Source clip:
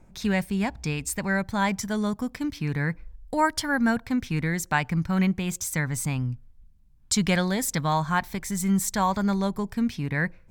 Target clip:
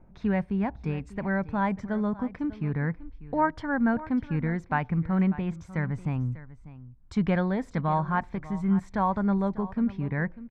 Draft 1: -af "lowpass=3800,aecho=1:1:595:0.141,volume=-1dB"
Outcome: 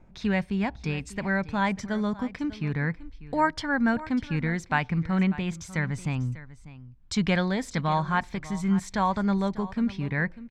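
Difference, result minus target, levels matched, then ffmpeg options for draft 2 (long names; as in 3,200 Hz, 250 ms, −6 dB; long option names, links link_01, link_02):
4,000 Hz band +13.0 dB
-af "lowpass=1400,aecho=1:1:595:0.141,volume=-1dB"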